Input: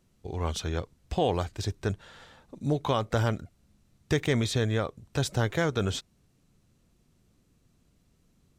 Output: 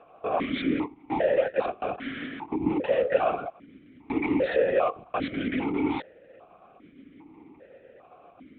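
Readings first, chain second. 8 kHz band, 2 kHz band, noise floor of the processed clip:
under -40 dB, +2.0 dB, -55 dBFS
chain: median filter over 15 samples; overdrive pedal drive 35 dB, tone 2 kHz, clips at -14.5 dBFS; LPC vocoder at 8 kHz whisper; loudness maximiser +16.5 dB; stepped vowel filter 2.5 Hz; trim -4 dB

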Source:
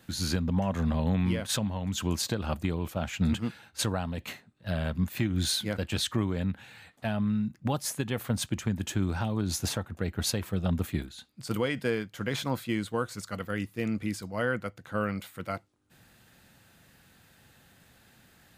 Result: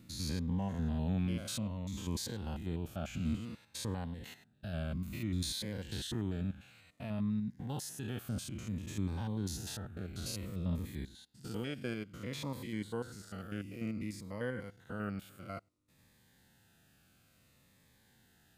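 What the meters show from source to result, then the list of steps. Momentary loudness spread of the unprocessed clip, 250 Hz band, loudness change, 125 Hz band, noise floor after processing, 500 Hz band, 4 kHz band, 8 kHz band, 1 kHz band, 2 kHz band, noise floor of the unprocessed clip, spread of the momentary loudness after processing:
8 LU, -7.5 dB, -8.5 dB, -7.0 dB, -68 dBFS, -10.5 dB, -10.0 dB, -9.5 dB, -11.5 dB, -11.5 dB, -61 dBFS, 10 LU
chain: spectrogram pixelated in time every 100 ms; Shepard-style phaser falling 0.57 Hz; trim -6 dB

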